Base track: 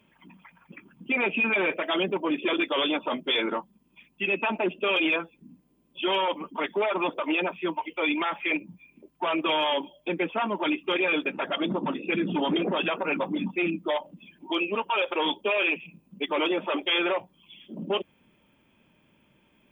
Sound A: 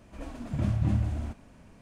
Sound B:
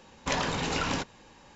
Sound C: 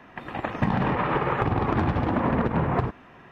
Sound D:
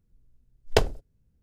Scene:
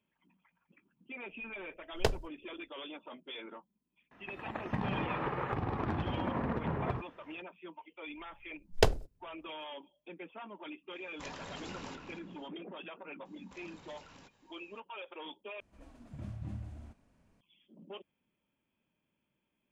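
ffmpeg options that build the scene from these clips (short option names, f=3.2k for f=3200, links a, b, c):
-filter_complex "[4:a]asplit=2[a][b];[2:a]asplit=2[c][d];[0:a]volume=-19.5dB[e];[c]asplit=2[f][g];[g]adelay=233,lowpass=f=2.8k:p=1,volume=-4dB,asplit=2[h][i];[i]adelay=233,lowpass=f=2.8k:p=1,volume=0.33,asplit=2[j][k];[k]adelay=233,lowpass=f=2.8k:p=1,volume=0.33,asplit=2[l][m];[m]adelay=233,lowpass=f=2.8k:p=1,volume=0.33[n];[f][h][j][l][n]amix=inputs=5:normalize=0[o];[d]acompressor=threshold=-37dB:ratio=6:attack=3.2:release=140:knee=1:detection=peak[p];[e]asplit=2[q][r];[q]atrim=end=15.604[s];[1:a]atrim=end=1.81,asetpts=PTS-STARTPTS,volume=-15.5dB[t];[r]atrim=start=17.406[u];[a]atrim=end=1.42,asetpts=PTS-STARTPTS,volume=-8.5dB,afade=t=in:d=0.004:c=hsin,afade=t=out:st=1.416:d=0.004:c=hsin,adelay=1280[v];[3:a]atrim=end=3.31,asetpts=PTS-STARTPTS,volume=-11dB,afade=t=in:d=0.004:c=hsin,afade=t=out:st=3.306:d=0.004:c=hsin,adelay=4110[w];[b]atrim=end=1.42,asetpts=PTS-STARTPTS,volume=-4dB,afade=t=in:d=0.004:c=hsin,afade=t=out:st=1.416:d=0.004:c=hsin,adelay=8060[x];[o]atrim=end=1.55,asetpts=PTS-STARTPTS,volume=-17dB,afade=t=in:d=0.004:c=hsin,afade=t=out:st=1.546:d=0.004:c=hsin,adelay=10930[y];[p]atrim=end=1.55,asetpts=PTS-STARTPTS,volume=-16dB,afade=t=in:d=0.004:c=hsin,afade=t=out:st=1.546:d=0.004:c=hsin,adelay=13250[z];[s][t]acrossfade=d=0.004:c1=hsin:c2=hsin[aa];[aa][u]acrossfade=d=0.004:c1=hsin:c2=hsin[ab];[ab][v][w][x][y][z]amix=inputs=6:normalize=0"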